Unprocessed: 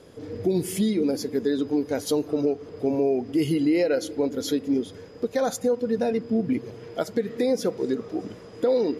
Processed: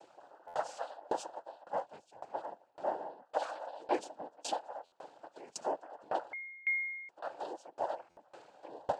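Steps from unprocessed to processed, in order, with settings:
frequency inversion band by band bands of 1,000 Hz
0:01.34–0:02.46: noise gate −25 dBFS, range −7 dB
flanger 0.49 Hz, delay 0.1 ms, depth 9.2 ms, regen −29%
cochlear-implant simulation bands 8
0:03.98–0:04.54: parametric band 240 Hz +12 dB 0.96 octaves
0:06.33–0:07.09: beep over 2,140 Hz −23 dBFS
buffer that repeats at 0:00.47/0:04.85/0:08.10, samples 512, times 5
tremolo with a ramp in dB decaying 1.8 Hz, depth 28 dB
level −2.5 dB

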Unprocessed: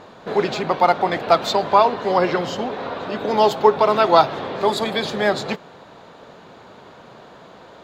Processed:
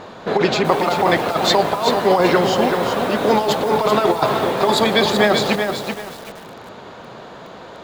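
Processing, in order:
hum removal 145.8 Hz, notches 7
compressor whose output falls as the input rises −18 dBFS, ratio −0.5
feedback echo at a low word length 382 ms, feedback 35%, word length 6 bits, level −5.5 dB
level +4 dB

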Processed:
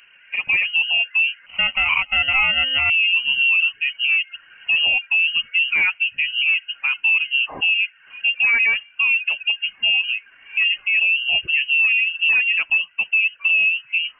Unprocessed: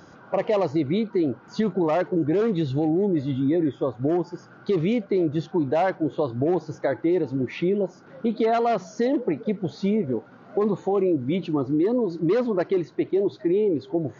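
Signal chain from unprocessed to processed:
harmonic and percussive parts rebalanced percussive −6 dB
reverb reduction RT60 0.61 s
automatic gain control gain up to 7.5 dB
brickwall limiter −11.5 dBFS, peak gain reduction 5 dB
0:01.46–0:02.90: sample-rate reduction 1,300 Hz, jitter 0%
voice inversion scrambler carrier 3,000 Hz

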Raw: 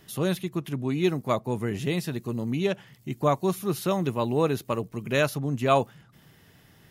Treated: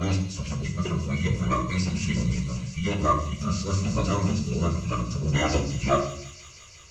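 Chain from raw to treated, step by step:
slices reordered back to front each 213 ms, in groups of 2
high-shelf EQ 2,300 Hz +5 dB
phaser with its sweep stopped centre 2,400 Hz, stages 8
phase-vocoder pitch shift with formants kept −11.5 semitones
in parallel at −7 dB: hard clipping −24.5 dBFS, distortion −13 dB
on the sum: mains-hum notches 50/100/150/200/250/300/350 Hz
delay with a high-pass on its return 174 ms, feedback 82%, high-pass 4,400 Hz, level −5 dB
on a send at −2.5 dB: convolution reverb RT60 0.60 s, pre-delay 7 ms

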